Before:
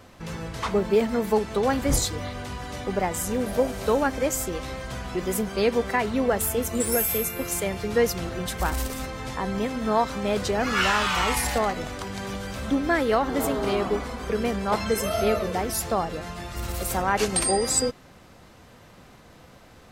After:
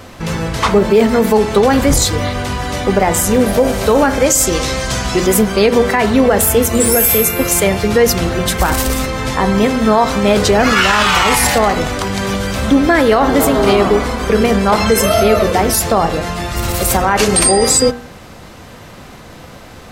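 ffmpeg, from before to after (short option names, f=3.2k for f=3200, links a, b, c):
-filter_complex "[0:a]asettb=1/sr,asplit=3[a][b][c];[a]atrim=end=4.264[d];[b]atrim=start=4.26:end=5.27,asetpts=PTS-STARTPTS,afade=t=in:d=0.004:c=qsin,afade=t=out:st=1.006:d=0.004:c=qsin,equalizer=f=6.3k:w=0.79:g=9[e];[c]atrim=start=5.266[f];[d][e]acrossfade=d=0.004:c1=hsin:c2=qsin[g];[g][f]acrossfade=d=0.004:c1=qsin:c2=hsin,bandreject=f=60.22:t=h:w=4,bandreject=f=120.44:t=h:w=4,bandreject=f=180.66:t=h:w=4,bandreject=f=240.88:t=h:w=4,bandreject=f=301.1:t=h:w=4,bandreject=f=361.32:t=h:w=4,bandreject=f=421.54:t=h:w=4,bandreject=f=481.76:t=h:w=4,bandreject=f=541.98:t=h:w=4,bandreject=f=602.2:t=h:w=4,bandreject=f=662.42:t=h:w=4,bandreject=f=722.64:t=h:w=4,bandreject=f=782.86:t=h:w=4,bandreject=f=843.08:t=h:w=4,bandreject=f=903.3:t=h:w=4,bandreject=f=963.52:t=h:w=4,bandreject=f=1.02374k:t=h:w=4,bandreject=f=1.08396k:t=h:w=4,bandreject=f=1.14418k:t=h:w=4,bandreject=f=1.2044k:t=h:w=4,bandreject=f=1.26462k:t=h:w=4,bandreject=f=1.32484k:t=h:w=4,bandreject=f=1.38506k:t=h:w=4,bandreject=f=1.44528k:t=h:w=4,bandreject=f=1.5055k:t=h:w=4,bandreject=f=1.56572k:t=h:w=4,bandreject=f=1.62594k:t=h:w=4,bandreject=f=1.68616k:t=h:w=4,bandreject=f=1.74638k:t=h:w=4,bandreject=f=1.8066k:t=h:w=4,bandreject=f=1.86682k:t=h:w=4,alimiter=level_in=16dB:limit=-1dB:release=50:level=0:latency=1,volume=-1dB"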